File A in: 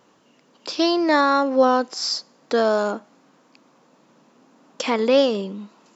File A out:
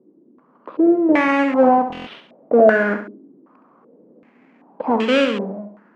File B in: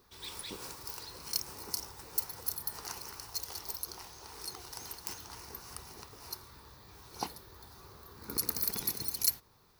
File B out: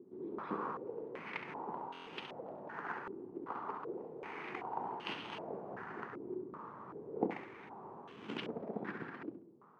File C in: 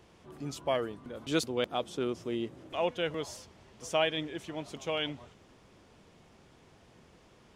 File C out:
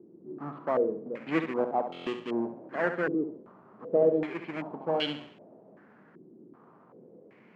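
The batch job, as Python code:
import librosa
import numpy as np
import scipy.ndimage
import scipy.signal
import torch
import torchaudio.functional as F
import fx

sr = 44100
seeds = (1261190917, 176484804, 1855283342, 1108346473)

p1 = fx.halfwave_hold(x, sr)
p2 = scipy.signal.sosfilt(scipy.signal.butter(4, 180.0, 'highpass', fs=sr, output='sos'), p1)
p3 = fx.low_shelf(p2, sr, hz=350.0, db=8.0)
p4 = fx.rider(p3, sr, range_db=4, speed_s=2.0)
p5 = p4 + fx.room_flutter(p4, sr, wall_m=11.7, rt60_s=0.47, dry=0)
p6 = np.repeat(scipy.signal.resample_poly(p5, 1, 6), 6)[:len(p5)]
p7 = fx.buffer_glitch(p6, sr, at_s=(1.88,), block=1024, repeats=7)
p8 = fx.filter_held_lowpass(p7, sr, hz=2.6, low_hz=350.0, high_hz=3000.0)
y = F.gain(torch.from_numpy(p8), -7.0).numpy()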